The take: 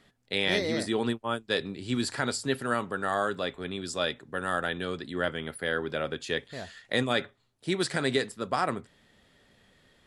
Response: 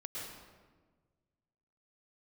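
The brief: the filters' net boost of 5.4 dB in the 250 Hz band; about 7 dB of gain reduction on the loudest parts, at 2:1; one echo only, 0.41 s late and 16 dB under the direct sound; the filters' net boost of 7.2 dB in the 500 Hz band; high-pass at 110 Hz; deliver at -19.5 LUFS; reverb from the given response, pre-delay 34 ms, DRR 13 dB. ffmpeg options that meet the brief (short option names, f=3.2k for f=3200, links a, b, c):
-filter_complex "[0:a]highpass=110,equalizer=f=250:t=o:g=4.5,equalizer=f=500:t=o:g=7.5,acompressor=threshold=-29dB:ratio=2,aecho=1:1:410:0.158,asplit=2[a][b];[1:a]atrim=start_sample=2205,adelay=34[c];[b][c]afir=irnorm=-1:irlink=0,volume=-13dB[d];[a][d]amix=inputs=2:normalize=0,volume=11.5dB"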